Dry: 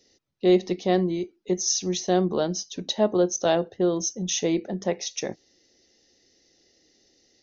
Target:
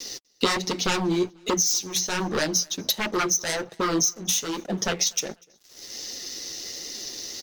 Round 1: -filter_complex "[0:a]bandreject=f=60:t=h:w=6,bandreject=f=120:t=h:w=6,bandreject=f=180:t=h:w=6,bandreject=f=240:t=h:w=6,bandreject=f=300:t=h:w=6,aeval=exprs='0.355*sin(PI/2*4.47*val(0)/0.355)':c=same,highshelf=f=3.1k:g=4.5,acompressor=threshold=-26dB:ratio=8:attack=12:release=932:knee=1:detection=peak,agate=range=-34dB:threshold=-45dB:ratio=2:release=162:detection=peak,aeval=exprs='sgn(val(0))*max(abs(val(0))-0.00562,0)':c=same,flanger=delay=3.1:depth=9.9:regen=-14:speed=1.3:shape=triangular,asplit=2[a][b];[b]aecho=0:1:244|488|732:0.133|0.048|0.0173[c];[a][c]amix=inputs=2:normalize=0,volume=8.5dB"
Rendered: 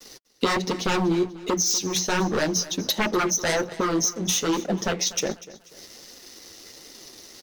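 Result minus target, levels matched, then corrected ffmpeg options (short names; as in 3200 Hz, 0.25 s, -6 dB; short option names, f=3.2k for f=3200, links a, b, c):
echo-to-direct +11 dB; 8000 Hz band -2.5 dB
-filter_complex "[0:a]bandreject=f=60:t=h:w=6,bandreject=f=120:t=h:w=6,bandreject=f=180:t=h:w=6,bandreject=f=240:t=h:w=6,bandreject=f=300:t=h:w=6,aeval=exprs='0.355*sin(PI/2*4.47*val(0)/0.355)':c=same,highshelf=f=3.1k:g=13.5,acompressor=threshold=-26dB:ratio=8:attack=12:release=932:knee=1:detection=peak,agate=range=-34dB:threshold=-45dB:ratio=2:release=162:detection=peak,aeval=exprs='sgn(val(0))*max(abs(val(0))-0.00562,0)':c=same,flanger=delay=3.1:depth=9.9:regen=-14:speed=1.3:shape=triangular,asplit=2[a][b];[b]aecho=0:1:244|488:0.0376|0.0135[c];[a][c]amix=inputs=2:normalize=0,volume=8.5dB"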